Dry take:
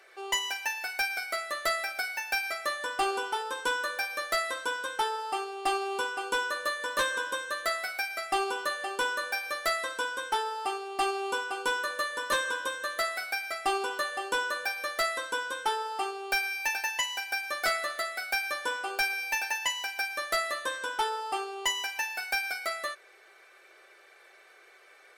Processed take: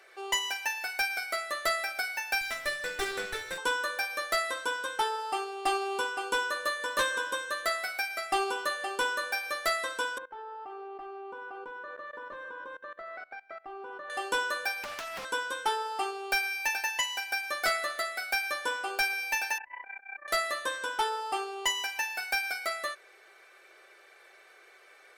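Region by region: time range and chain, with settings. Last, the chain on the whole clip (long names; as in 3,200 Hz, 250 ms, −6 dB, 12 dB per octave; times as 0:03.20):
0:02.41–0:03.58: lower of the sound and its delayed copy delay 0.53 ms + low-shelf EQ 240 Hz −5 dB
0:10.18–0:14.10: low-pass filter 1,400 Hz + output level in coarse steps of 21 dB
0:14.83–0:15.25: high-pass filter 330 Hz + downward compressor 16 to 1, threshold −34 dBFS + highs frequency-modulated by the lows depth 0.93 ms
0:19.58–0:20.28: Butterworth low-pass 2,400 Hz 96 dB per octave + compressor whose output falls as the input rises −40 dBFS, ratio −0.5 + amplitude modulation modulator 31 Hz, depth 75%
whole clip: no processing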